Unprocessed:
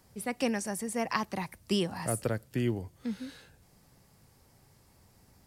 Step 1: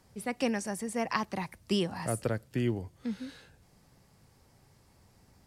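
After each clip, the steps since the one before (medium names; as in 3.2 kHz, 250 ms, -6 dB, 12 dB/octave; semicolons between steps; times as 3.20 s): treble shelf 12 kHz -11 dB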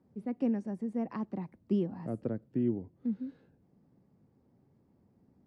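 band-pass filter 250 Hz, Q 1.5; trim +2.5 dB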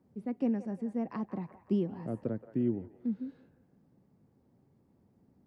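feedback echo behind a band-pass 174 ms, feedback 44%, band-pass 1.1 kHz, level -11 dB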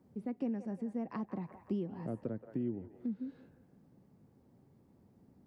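compression 2:1, threshold -42 dBFS, peak gain reduction 9.5 dB; trim +2.5 dB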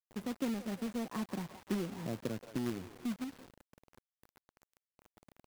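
companded quantiser 4-bit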